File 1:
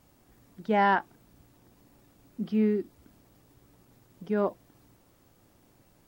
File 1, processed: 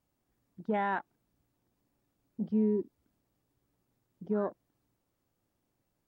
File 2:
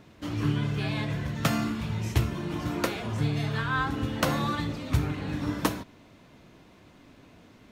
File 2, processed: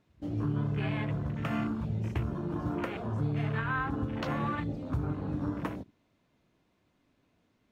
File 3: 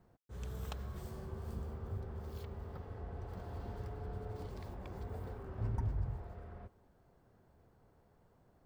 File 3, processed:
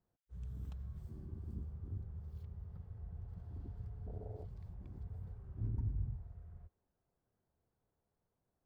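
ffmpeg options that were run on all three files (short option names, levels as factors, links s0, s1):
-af "afwtdn=0.0141,alimiter=limit=0.1:level=0:latency=1:release=121,volume=0.841"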